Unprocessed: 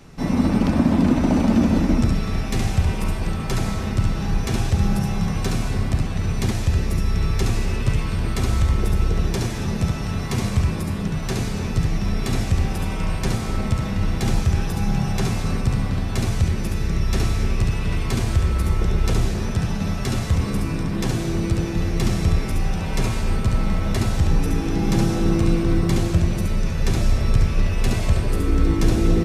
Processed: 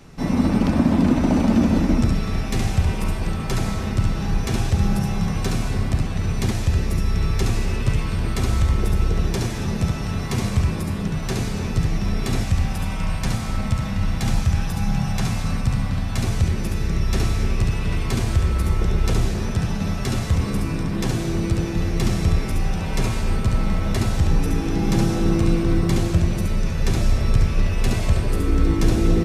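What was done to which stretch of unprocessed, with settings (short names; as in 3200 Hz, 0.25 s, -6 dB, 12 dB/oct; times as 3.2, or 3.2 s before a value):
12.43–16.24 bell 390 Hz -10 dB 0.61 oct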